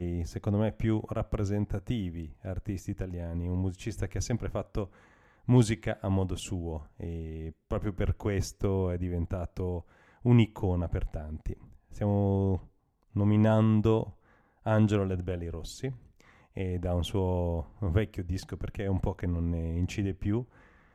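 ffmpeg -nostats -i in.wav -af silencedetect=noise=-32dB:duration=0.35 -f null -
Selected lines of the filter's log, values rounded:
silence_start: 4.84
silence_end: 5.48 | silence_duration: 0.64
silence_start: 9.79
silence_end: 10.25 | silence_duration: 0.47
silence_start: 11.53
silence_end: 12.01 | silence_duration: 0.49
silence_start: 12.57
silence_end: 13.16 | silence_duration: 0.58
silence_start: 14.03
silence_end: 14.67 | silence_duration: 0.63
silence_start: 15.91
silence_end: 16.57 | silence_duration: 0.66
silence_start: 20.42
silence_end: 20.94 | silence_duration: 0.52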